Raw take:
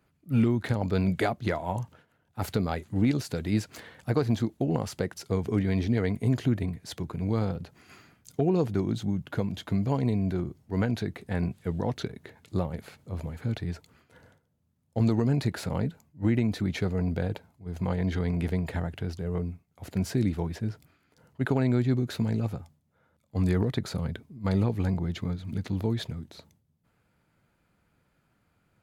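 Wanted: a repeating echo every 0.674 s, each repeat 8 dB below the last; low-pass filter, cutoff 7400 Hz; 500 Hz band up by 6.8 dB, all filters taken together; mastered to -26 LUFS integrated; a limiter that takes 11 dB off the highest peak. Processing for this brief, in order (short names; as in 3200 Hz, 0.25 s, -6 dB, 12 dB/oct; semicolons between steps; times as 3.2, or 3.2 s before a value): LPF 7400 Hz; bell 500 Hz +8.5 dB; limiter -19 dBFS; feedback echo 0.674 s, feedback 40%, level -8 dB; gain +4.5 dB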